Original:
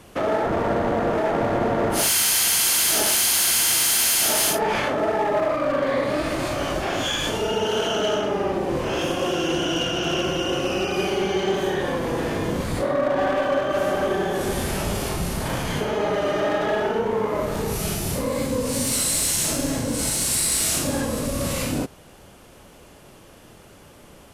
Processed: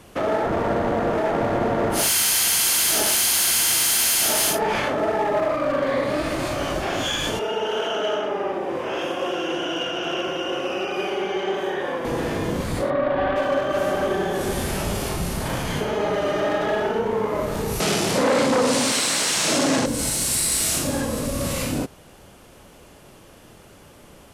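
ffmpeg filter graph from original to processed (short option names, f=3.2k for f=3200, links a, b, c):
-filter_complex "[0:a]asettb=1/sr,asplit=3[a][b][c];[a]atrim=end=7.394[d];[b]atrim=start=7.39:end=12.05,asetpts=PTS-STARTPTS,afade=t=in:d=0.004:c=qsin,afade=t=out:st=4.656:d=0.004:c=qsin,highpass=82,bass=f=250:g=-13,treble=f=4k:g=-10,bandreject=f=4.2k:w=11[e];[c]atrim=start=12.046[f];[d][e]acrossfade=d=0.004:c1=hsin:c2=qsin[g];[g][f]acrossfade=d=0.004:c1=qsin:c2=hsin,asettb=1/sr,asplit=3[h][i][j];[h]atrim=end=12.904[k];[i]atrim=start=12.9:end=13.36,asetpts=PTS-STARTPTS,afade=t=in:d=0.004:c=qsin,afade=t=out:st=0.456:d=0.004:c=qsin,lowpass=f=3.8k:w=0.5412,lowpass=f=3.8k:w=1.3066,asubboost=boost=11.5:cutoff=130[l];[j]atrim=start=13.356[m];[k][l]acrossfade=d=0.004:c1=hsin:c2=qsin[n];[n][m]acrossfade=d=0.004:c1=qsin:c2=hsin,asettb=1/sr,asplit=3[o][p][q];[o]atrim=end=17.804[r];[p]atrim=start=17.8:end=19.86,asetpts=PTS-STARTPTS,afade=t=in:d=0.004:c=qsin,afade=t=out:st=2.056:d=0.004:c=qsin,aeval=exprs='0.2*sin(PI/2*2.51*val(0)/0.2)':c=same,highpass=220,lowpass=6.5k[s];[q]atrim=start=19.856[t];[r][s]acrossfade=d=0.004:c1=hsin:c2=qsin[u];[u][t]acrossfade=d=0.004:c1=qsin:c2=hsin"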